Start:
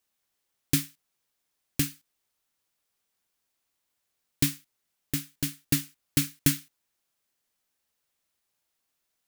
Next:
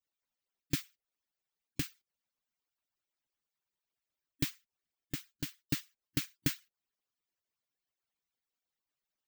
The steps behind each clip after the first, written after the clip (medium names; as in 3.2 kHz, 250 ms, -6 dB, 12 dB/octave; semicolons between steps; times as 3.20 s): harmonic-percussive separation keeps percussive; peaking EQ 11 kHz -12.5 dB 0.78 oct; trim -6.5 dB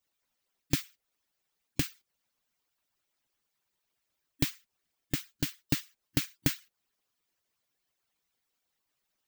compression 2:1, threshold -36 dBFS, peak gain reduction 6.5 dB; trim +9 dB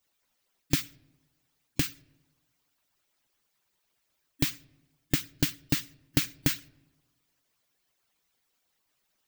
peak limiter -13 dBFS, peak gain reduction 4.5 dB; on a send at -23.5 dB: reverberation RT60 1.1 s, pre-delay 3 ms; on the sum: trim +5.5 dB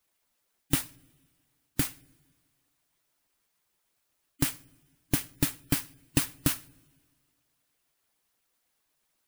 bit-reversed sample order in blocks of 16 samples; two-slope reverb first 0.33 s, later 2 s, from -18 dB, DRR 17 dB; spectral gate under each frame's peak -30 dB strong